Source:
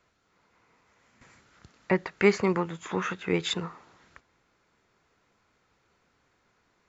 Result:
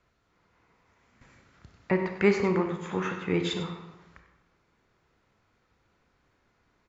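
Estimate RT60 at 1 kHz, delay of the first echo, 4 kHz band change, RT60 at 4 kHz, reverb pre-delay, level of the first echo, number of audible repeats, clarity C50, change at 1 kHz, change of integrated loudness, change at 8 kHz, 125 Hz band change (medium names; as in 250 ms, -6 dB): 1.1 s, 96 ms, -3.0 dB, 0.70 s, 25 ms, -13.5 dB, 1, 6.0 dB, -1.5 dB, 0.0 dB, no reading, +1.5 dB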